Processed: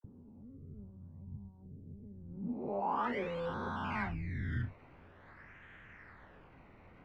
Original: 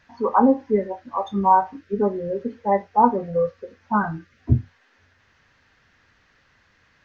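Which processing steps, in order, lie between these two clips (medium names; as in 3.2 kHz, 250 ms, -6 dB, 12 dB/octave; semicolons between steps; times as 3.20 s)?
reverse spectral sustain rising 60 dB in 1.96 s; treble shelf 2.8 kHz +10 dB; harmonic-percussive split harmonic -9 dB; bass shelf 380 Hz +11 dB; reverse; compression 8:1, threshold -33 dBFS, peak gain reduction 25 dB; reverse; decimation with a swept rate 18×, swing 100% 0.48 Hz; phase dispersion lows, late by 43 ms, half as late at 960 Hz; low-pass sweep 100 Hz -> 2 kHz, 2.28–3.11 s; trim -3 dB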